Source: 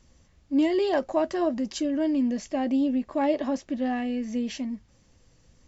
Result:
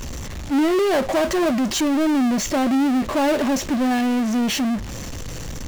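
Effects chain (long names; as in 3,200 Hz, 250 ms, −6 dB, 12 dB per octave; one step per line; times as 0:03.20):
notch filter 4,900 Hz, Q 9.5
power curve on the samples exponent 0.35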